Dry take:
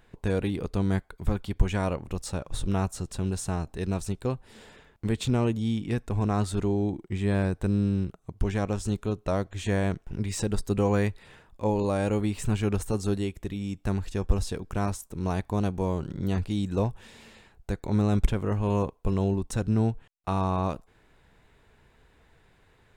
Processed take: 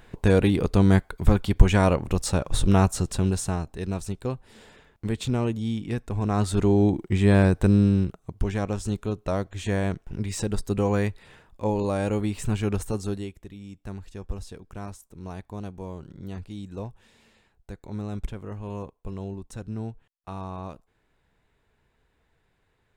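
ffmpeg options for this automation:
-af "volume=16dB,afade=t=out:st=3:d=0.69:silence=0.375837,afade=t=in:st=6.21:d=0.63:silence=0.398107,afade=t=out:st=7.61:d=0.86:silence=0.446684,afade=t=out:st=12.83:d=0.62:silence=0.334965"

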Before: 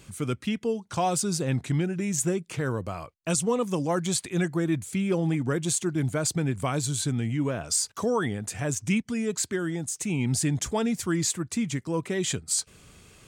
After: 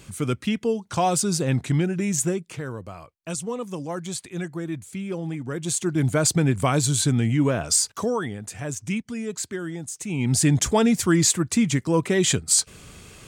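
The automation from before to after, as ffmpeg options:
-af "volume=24.5dB,afade=t=out:st=2.1:d=0.57:silence=0.375837,afade=t=in:st=5.49:d=0.7:silence=0.281838,afade=t=out:st=7.65:d=0.61:silence=0.375837,afade=t=in:st=10.07:d=0.44:silence=0.334965"

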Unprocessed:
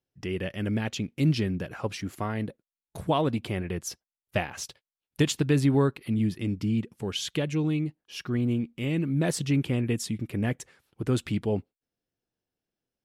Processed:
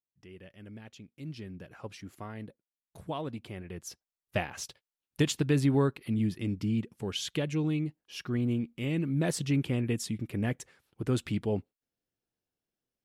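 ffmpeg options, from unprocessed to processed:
-af "volume=-3dB,afade=t=in:st=1.24:d=0.57:silence=0.421697,afade=t=in:st=3.65:d=0.74:silence=0.398107"

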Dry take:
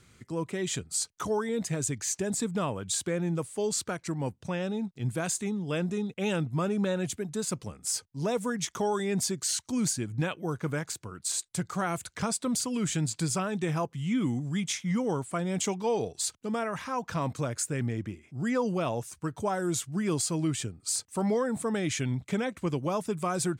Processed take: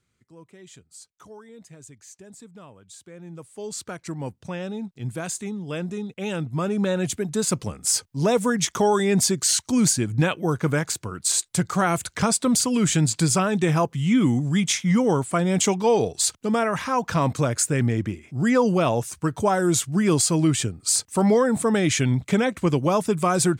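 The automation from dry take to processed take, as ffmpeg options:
-af "volume=9dB,afade=t=in:st=3.07:d=0.41:silence=0.421697,afade=t=in:st=3.48:d=0.61:silence=0.398107,afade=t=in:st=6.3:d=1.27:silence=0.375837"

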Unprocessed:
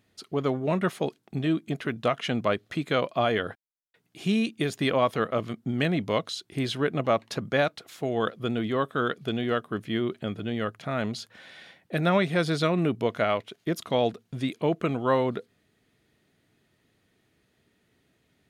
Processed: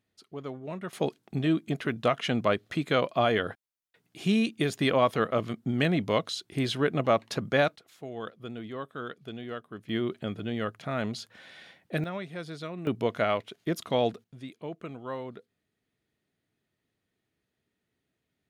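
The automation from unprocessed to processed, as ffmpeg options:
-af "asetnsamples=n=441:p=0,asendcmd='0.93 volume volume 0dB;7.76 volume volume -11dB;9.89 volume volume -2dB;12.04 volume volume -13.5dB;12.87 volume volume -1.5dB;14.24 volume volume -13dB',volume=-11.5dB"

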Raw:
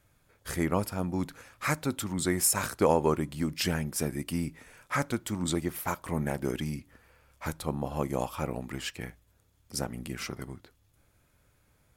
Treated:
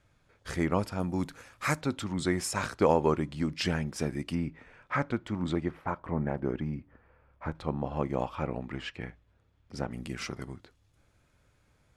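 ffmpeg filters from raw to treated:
-af "asetnsamples=n=441:p=0,asendcmd='1 lowpass f 10000;1.81 lowpass f 5200;4.35 lowpass f 2600;5.71 lowpass f 1500;7.55 lowpass f 3000;9.91 lowpass f 7300',lowpass=5.9k"

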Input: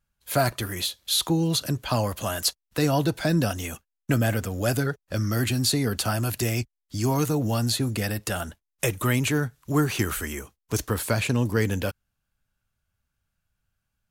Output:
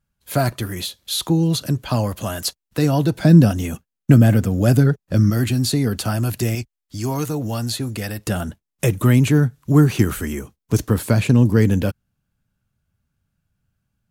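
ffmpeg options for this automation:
-af "asetnsamples=n=441:p=0,asendcmd='3.17 equalizer g 14;5.3 equalizer g 7;6.55 equalizer g 0.5;8.27 equalizer g 12',equalizer=f=170:t=o:w=2.6:g=7"

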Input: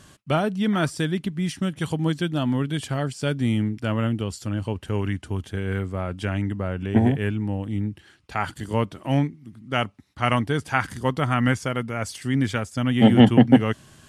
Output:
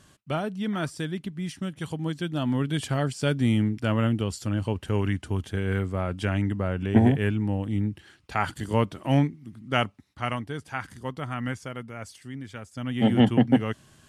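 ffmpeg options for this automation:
-af "volume=11.5dB,afade=t=in:st=2.13:d=0.71:silence=0.473151,afade=t=out:st=9.76:d=0.62:silence=0.316228,afade=t=out:st=11.99:d=0.45:silence=0.446684,afade=t=in:st=12.44:d=0.71:silence=0.266073"

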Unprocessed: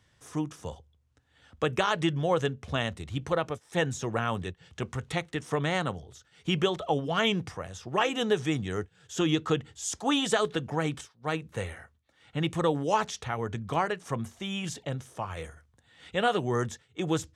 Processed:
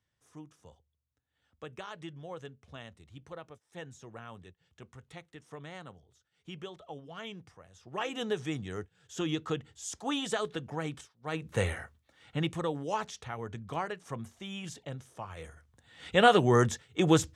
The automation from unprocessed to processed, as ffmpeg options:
-af "volume=18dB,afade=t=in:st=7.71:d=0.45:silence=0.298538,afade=t=in:st=11.3:d=0.38:silence=0.237137,afade=t=out:st=11.68:d=0.95:silence=0.223872,afade=t=in:st=15.38:d=0.85:silence=0.251189"

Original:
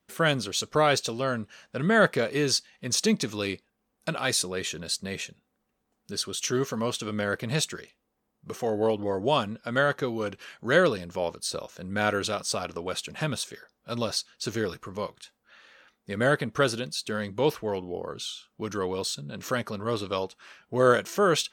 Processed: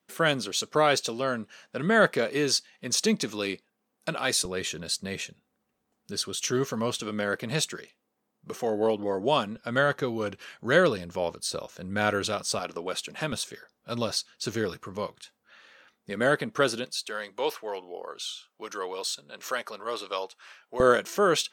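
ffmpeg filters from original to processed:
-af "asetnsamples=n=441:p=0,asendcmd='4.45 highpass f 72;7 highpass f 150;9.56 highpass f 51;12.59 highpass f 200;13.32 highpass f 78;16.1 highpass f 180;16.85 highpass f 550;20.8 highpass f 190',highpass=170"

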